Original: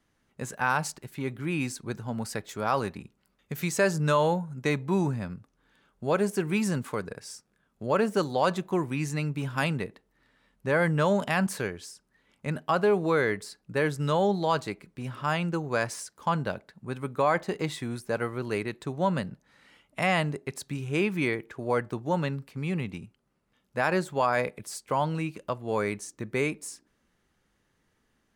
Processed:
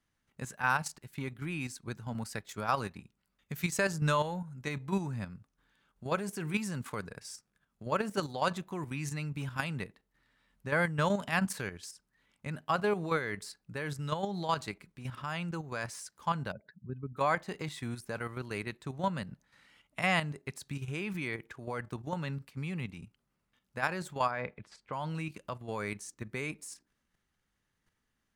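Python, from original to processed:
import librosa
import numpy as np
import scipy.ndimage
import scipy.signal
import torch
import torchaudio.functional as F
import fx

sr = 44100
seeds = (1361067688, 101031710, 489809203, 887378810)

y = fx.transient(x, sr, attack_db=3, sustain_db=-3, at=(0.64, 4.38))
y = fx.spec_expand(y, sr, power=2.2, at=(16.51, 17.16), fade=0.02)
y = fx.lowpass(y, sr, hz=2600.0, slope=12, at=(24.31, 24.93))
y = fx.peak_eq(y, sr, hz=420.0, db=-6.5, octaves=1.9)
y = fx.level_steps(y, sr, step_db=9)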